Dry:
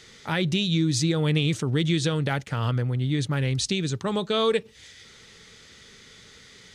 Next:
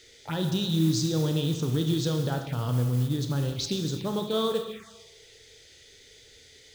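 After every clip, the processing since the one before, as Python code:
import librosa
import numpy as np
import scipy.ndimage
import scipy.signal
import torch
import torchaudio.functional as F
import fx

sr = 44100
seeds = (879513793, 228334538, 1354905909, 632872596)

y = fx.rev_schroeder(x, sr, rt60_s=1.3, comb_ms=25, drr_db=4.5)
y = fx.env_phaser(y, sr, low_hz=160.0, high_hz=2200.0, full_db=-22.5)
y = fx.mod_noise(y, sr, seeds[0], snr_db=22)
y = F.gain(torch.from_numpy(y), -3.0).numpy()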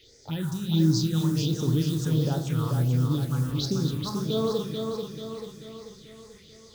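y = fx.phaser_stages(x, sr, stages=4, low_hz=460.0, high_hz=2900.0, hz=1.4, feedback_pct=45)
y = fx.echo_feedback(y, sr, ms=438, feedback_pct=52, wet_db=-5)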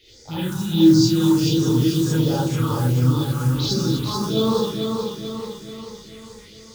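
y = fx.rev_gated(x, sr, seeds[1], gate_ms=100, shape='rising', drr_db=-7.5)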